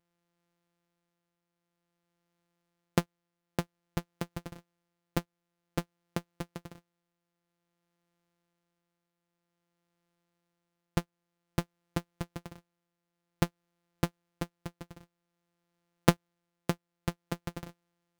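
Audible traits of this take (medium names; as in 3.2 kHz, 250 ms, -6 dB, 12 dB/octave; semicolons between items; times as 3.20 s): a buzz of ramps at a fixed pitch in blocks of 256 samples; tremolo triangle 0.52 Hz, depth 50%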